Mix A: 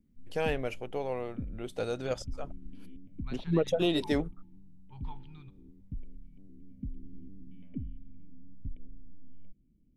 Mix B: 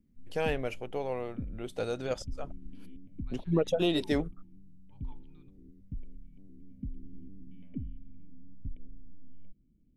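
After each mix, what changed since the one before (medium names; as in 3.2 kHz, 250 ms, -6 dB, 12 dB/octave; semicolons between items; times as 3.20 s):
second voice -11.5 dB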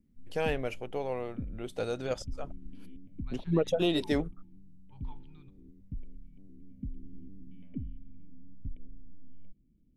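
second voice +5.5 dB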